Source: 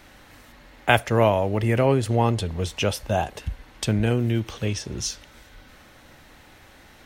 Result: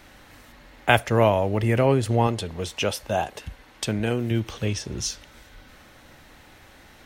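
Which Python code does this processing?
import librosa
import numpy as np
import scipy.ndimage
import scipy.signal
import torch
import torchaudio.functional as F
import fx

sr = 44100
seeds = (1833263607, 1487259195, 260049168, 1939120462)

y = fx.low_shelf(x, sr, hz=140.0, db=-10.0, at=(2.27, 4.31))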